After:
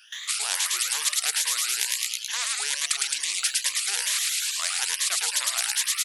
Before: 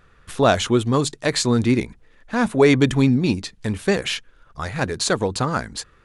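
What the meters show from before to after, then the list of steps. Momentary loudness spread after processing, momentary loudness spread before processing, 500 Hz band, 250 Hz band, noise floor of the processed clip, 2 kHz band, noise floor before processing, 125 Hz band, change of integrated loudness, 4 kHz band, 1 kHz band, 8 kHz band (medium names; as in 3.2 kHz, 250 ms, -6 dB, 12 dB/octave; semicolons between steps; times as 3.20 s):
3 LU, 12 LU, -30.0 dB, under -40 dB, -37 dBFS, -2.5 dB, -55 dBFS, under -40 dB, -3.5 dB, +3.5 dB, -12.0 dB, +9.0 dB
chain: drifting ripple filter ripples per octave 1.1, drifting +2.3 Hz, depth 21 dB; gate with hold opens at -40 dBFS; reverse; compression 8:1, threshold -24 dBFS, peak gain reduction 21 dB; reverse; ladder high-pass 2.6 kHz, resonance 30%; dynamic bell 8.5 kHz, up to +7 dB, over -49 dBFS, Q 0.72; on a send: frequency-shifting echo 108 ms, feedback 47%, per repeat +140 Hz, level -6 dB; on the sum: spectrum-flattening compressor 10:1; trim +6 dB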